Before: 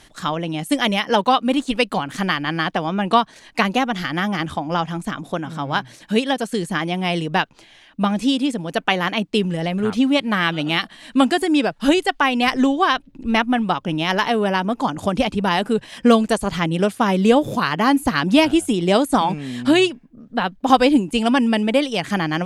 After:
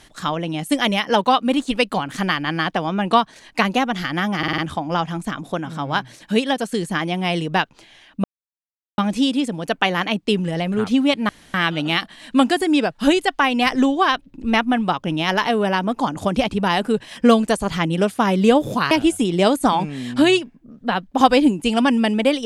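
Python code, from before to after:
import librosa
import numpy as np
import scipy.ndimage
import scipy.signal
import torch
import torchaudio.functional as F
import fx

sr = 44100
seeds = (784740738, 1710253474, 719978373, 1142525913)

y = fx.edit(x, sr, fx.stutter(start_s=4.38, slice_s=0.05, count=5),
    fx.insert_silence(at_s=8.04, length_s=0.74),
    fx.insert_room_tone(at_s=10.35, length_s=0.25),
    fx.cut(start_s=17.72, length_s=0.68), tone=tone)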